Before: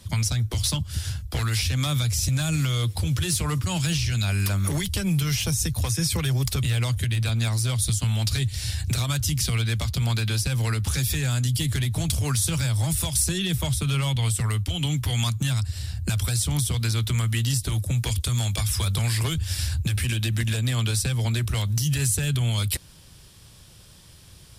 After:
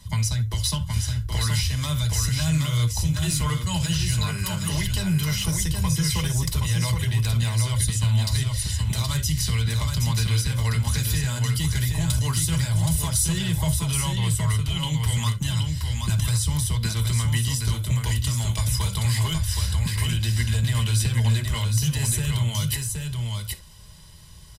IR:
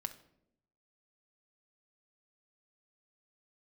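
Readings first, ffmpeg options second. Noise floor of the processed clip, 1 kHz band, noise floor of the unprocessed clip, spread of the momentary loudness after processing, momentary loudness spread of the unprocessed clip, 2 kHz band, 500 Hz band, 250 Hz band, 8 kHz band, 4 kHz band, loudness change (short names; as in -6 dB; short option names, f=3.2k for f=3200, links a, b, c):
-33 dBFS, +1.5 dB, -49 dBFS, 3 LU, 3 LU, -0.5 dB, -2.5 dB, +0.5 dB, +0.5 dB, +0.5 dB, +1.0 dB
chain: -filter_complex "[0:a]aecho=1:1:2:0.46,aecho=1:1:772:0.596[a];[1:a]atrim=start_sample=2205,atrim=end_sample=3528[b];[a][b]afir=irnorm=-1:irlink=0"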